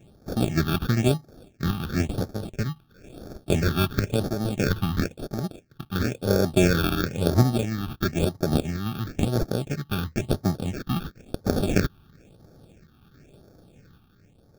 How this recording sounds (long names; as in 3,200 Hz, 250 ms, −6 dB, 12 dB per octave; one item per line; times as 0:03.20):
aliases and images of a low sample rate 1,000 Hz, jitter 0%
sample-and-hold tremolo
phaser sweep stages 6, 0.98 Hz, lowest notch 530–2,700 Hz